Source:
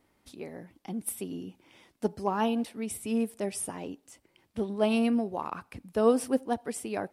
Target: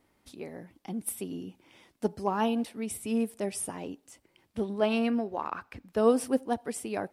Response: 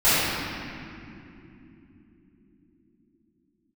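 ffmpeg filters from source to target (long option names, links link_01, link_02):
-filter_complex "[0:a]asettb=1/sr,asplit=3[link_01][link_02][link_03];[link_01]atrim=end=4.804[link_04];[link_02]atrim=start=4.8:end=5.97,asetpts=PTS-STARTPTS,afade=type=in:duration=0.004:curve=qsin,afade=type=out:start_time=1.166:duration=0.004:curve=qsin,equalizer=frequency=160:width_type=o:width=0.67:gain=-8,equalizer=frequency=1600:width_type=o:width=0.67:gain=5,equalizer=frequency=10000:width_type=o:width=0.67:gain=-10[link_05];[link_03]atrim=start=5.966[link_06];[link_04][link_05]acrossfade=duration=0.004:curve1=hsin:curve2=qsin[link_07];[link_07][link_06]acrossfade=duration=0.004:curve1=qsin:curve2=hsin"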